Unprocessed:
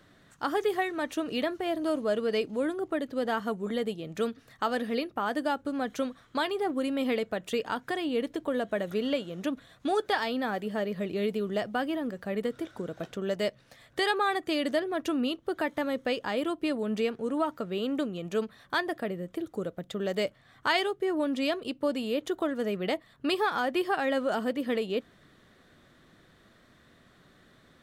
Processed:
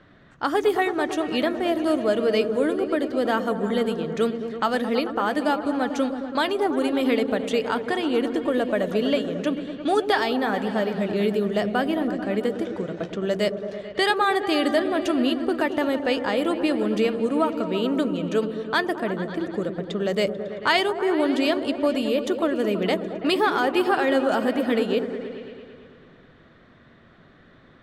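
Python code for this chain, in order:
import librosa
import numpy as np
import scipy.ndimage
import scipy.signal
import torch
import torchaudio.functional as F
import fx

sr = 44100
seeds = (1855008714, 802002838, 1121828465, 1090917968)

y = fx.echo_opening(x, sr, ms=110, hz=400, octaves=1, feedback_pct=70, wet_db=-6)
y = fx.env_lowpass(y, sr, base_hz=2800.0, full_db=-25.0)
y = y * librosa.db_to_amplitude(6.0)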